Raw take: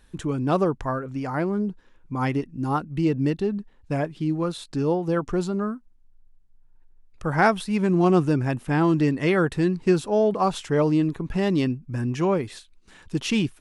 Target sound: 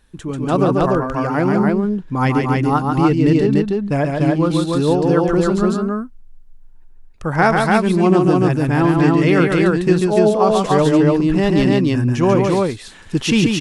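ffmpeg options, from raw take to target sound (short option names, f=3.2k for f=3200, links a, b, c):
-af "aecho=1:1:139.9|291.5:0.631|0.794,dynaudnorm=f=200:g=5:m=8dB"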